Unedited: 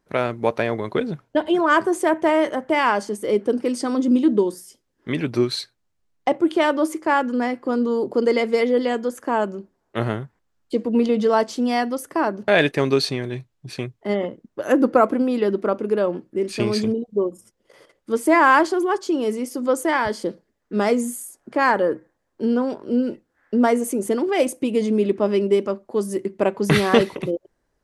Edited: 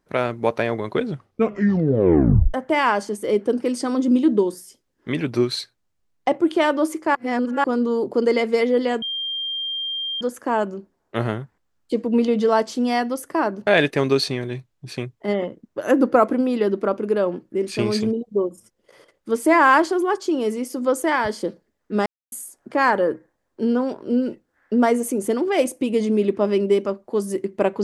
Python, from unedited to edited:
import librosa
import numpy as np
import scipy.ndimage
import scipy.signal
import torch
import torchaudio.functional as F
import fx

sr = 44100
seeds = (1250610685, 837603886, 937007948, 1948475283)

y = fx.edit(x, sr, fx.tape_stop(start_s=1.03, length_s=1.51),
    fx.reverse_span(start_s=7.15, length_s=0.49),
    fx.insert_tone(at_s=9.02, length_s=1.19, hz=3190.0, db=-24.0),
    fx.silence(start_s=20.87, length_s=0.26), tone=tone)